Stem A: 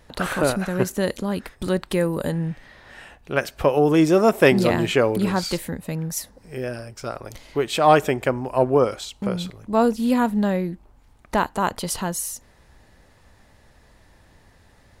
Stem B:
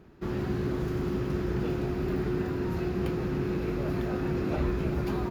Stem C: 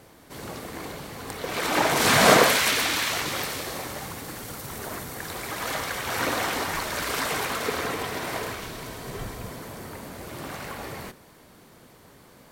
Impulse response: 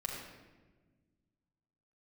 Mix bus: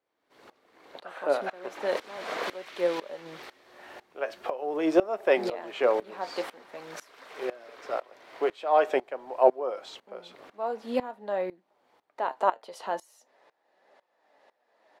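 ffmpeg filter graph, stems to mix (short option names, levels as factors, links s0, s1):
-filter_complex "[0:a]highpass=240,flanger=delay=4.8:depth=5.1:regen=68:speed=0.46:shape=triangular,equalizer=f=670:t=o:w=1.2:g=9,adelay=850,volume=1.06[s0];[1:a]adelay=1400,volume=0.106[s1];[2:a]volume=0.282[s2];[s0][s1][s2]amix=inputs=3:normalize=0,acrossover=split=290 4900:gain=0.1 1 0.178[s3][s4][s5];[s3][s4][s5]amix=inputs=3:normalize=0,aeval=exprs='val(0)*pow(10,-20*if(lt(mod(-2*n/s,1),2*abs(-2)/1000),1-mod(-2*n/s,1)/(2*abs(-2)/1000),(mod(-2*n/s,1)-2*abs(-2)/1000)/(1-2*abs(-2)/1000))/20)':c=same"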